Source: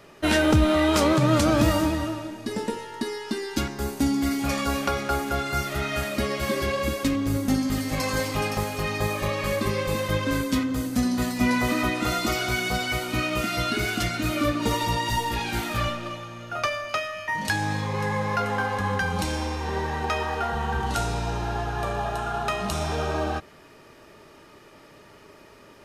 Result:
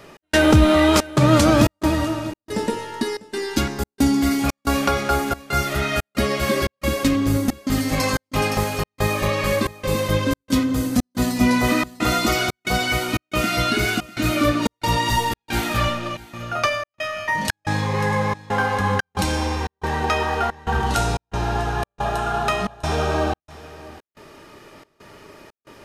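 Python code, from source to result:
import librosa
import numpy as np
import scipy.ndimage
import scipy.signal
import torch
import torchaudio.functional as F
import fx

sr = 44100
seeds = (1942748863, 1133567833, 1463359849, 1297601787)

y = fx.dynamic_eq(x, sr, hz=1700.0, q=0.96, threshold_db=-39.0, ratio=4.0, max_db=-4, at=(9.67, 11.64))
y = fx.step_gate(y, sr, bpm=90, pattern='x.xxxx.xxx.xx', floor_db=-60.0, edge_ms=4.5)
y = y + 10.0 ** (-20.0 / 20.0) * np.pad(y, (int(648 * sr / 1000.0), 0))[:len(y)]
y = y * 10.0 ** (5.5 / 20.0)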